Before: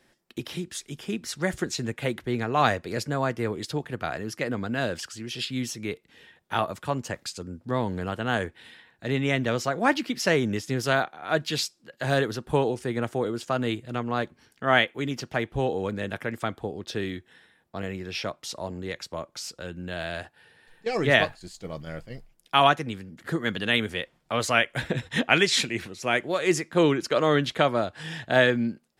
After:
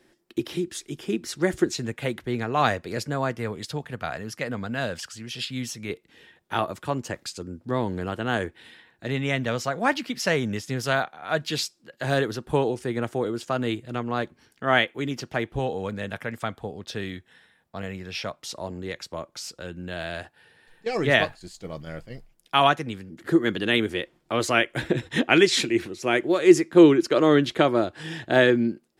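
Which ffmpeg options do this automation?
-af "asetnsamples=n=441:p=0,asendcmd='1.77 equalizer g 0;3.37 equalizer g -7;5.9 equalizer g 4.5;9.07 equalizer g -5;11.44 equalizer g 2;15.59 equalizer g -6;18.39 equalizer g 1.5;23.1 equalizer g 11.5',equalizer=f=340:t=o:w=0.53:g=10"

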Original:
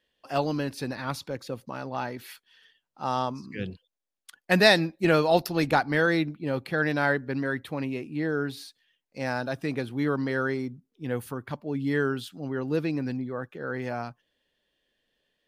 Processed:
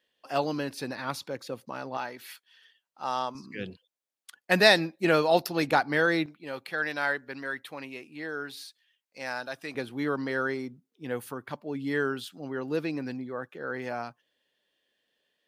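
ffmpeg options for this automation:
-af "asetnsamples=n=441:p=0,asendcmd='1.97 highpass f 700;3.35 highpass f 270;6.26 highpass f 1100;9.75 highpass f 330',highpass=f=270:p=1"

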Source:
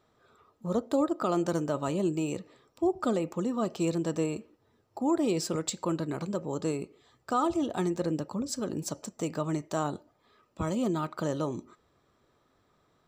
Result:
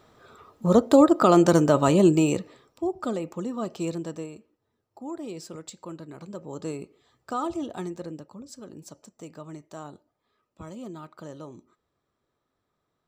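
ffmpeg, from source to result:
-af "volume=18dB,afade=t=out:st=2.1:d=0.74:silence=0.251189,afade=t=out:st=3.89:d=0.42:silence=0.398107,afade=t=in:st=6.14:d=0.59:silence=0.446684,afade=t=out:st=7.56:d=0.72:silence=0.398107"

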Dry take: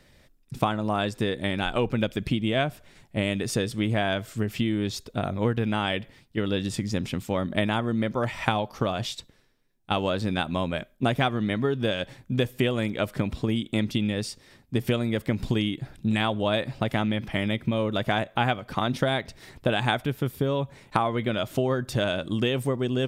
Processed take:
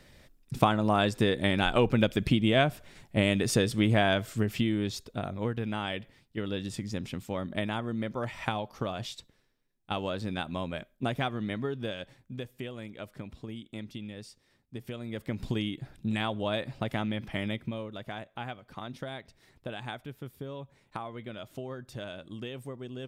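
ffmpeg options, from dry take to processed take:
-af "volume=10dB,afade=t=out:st=4.03:d=1.27:silence=0.398107,afade=t=out:st=11.52:d=0.94:silence=0.398107,afade=t=in:st=14.93:d=0.56:silence=0.354813,afade=t=out:st=17.49:d=0.4:silence=0.375837"

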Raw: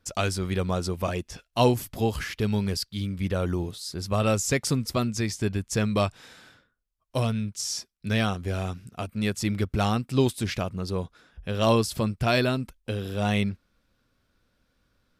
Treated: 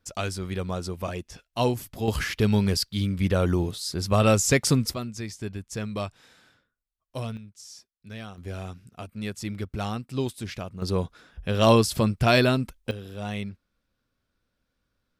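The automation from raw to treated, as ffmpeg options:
-af "asetnsamples=n=441:p=0,asendcmd='2.08 volume volume 4dB;4.94 volume volume -7dB;7.37 volume volume -14.5dB;8.38 volume volume -6dB;10.82 volume volume 3.5dB;12.91 volume volume -7.5dB',volume=-3.5dB"

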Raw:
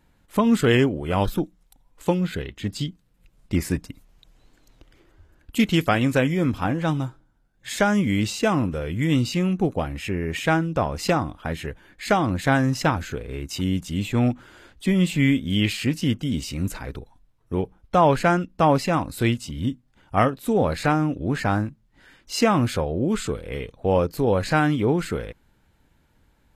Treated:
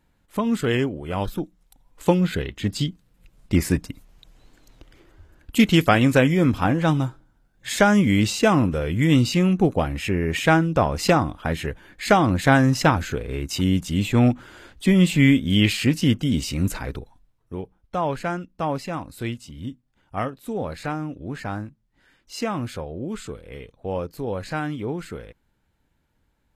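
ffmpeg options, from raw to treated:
-af "volume=3.5dB,afade=t=in:st=1.36:d=0.73:silence=0.421697,afade=t=out:st=16.83:d=0.75:silence=0.281838"

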